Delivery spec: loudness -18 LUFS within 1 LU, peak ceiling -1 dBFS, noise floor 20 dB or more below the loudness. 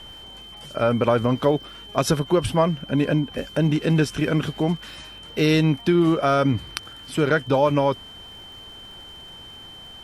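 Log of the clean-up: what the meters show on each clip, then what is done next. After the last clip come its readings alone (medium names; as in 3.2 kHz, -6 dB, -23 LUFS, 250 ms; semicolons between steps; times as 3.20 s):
tick rate 41 per s; steady tone 3.1 kHz; tone level -40 dBFS; loudness -21.5 LUFS; peak level -5.0 dBFS; loudness target -18.0 LUFS
-> de-click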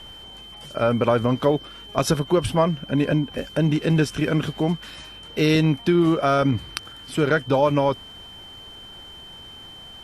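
tick rate 0 per s; steady tone 3.1 kHz; tone level -40 dBFS
-> band-stop 3.1 kHz, Q 30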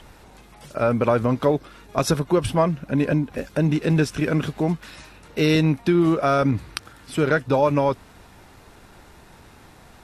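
steady tone not found; loudness -21.5 LUFS; peak level -5.0 dBFS; loudness target -18.0 LUFS
-> trim +3.5 dB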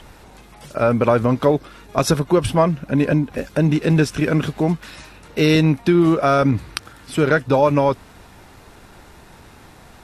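loudness -18.0 LUFS; peak level -1.5 dBFS; noise floor -46 dBFS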